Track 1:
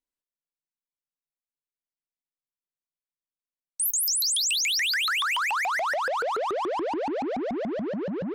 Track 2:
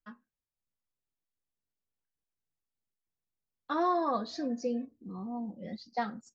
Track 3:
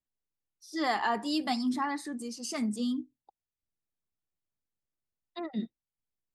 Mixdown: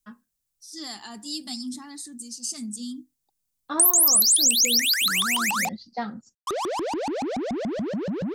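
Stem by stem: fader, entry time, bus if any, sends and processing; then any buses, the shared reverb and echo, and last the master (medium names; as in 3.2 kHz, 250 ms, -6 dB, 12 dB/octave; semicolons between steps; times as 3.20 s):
-0.5 dB, 0.00 s, muted 5.69–6.47 s, no send, treble shelf 4.6 kHz +7.5 dB
+1.5 dB, 0.00 s, no send, low-pass 4.2 kHz 12 dB/octave
-7.5 dB, 0.00 s, no send, graphic EQ 125/250/500/1000/2000/4000/8000 Hz -3/+3/-9/-6/-5/+4/+9 dB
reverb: none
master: tone controls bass +6 dB, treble +10 dB; compression 2.5:1, threshold -19 dBFS, peak gain reduction 8.5 dB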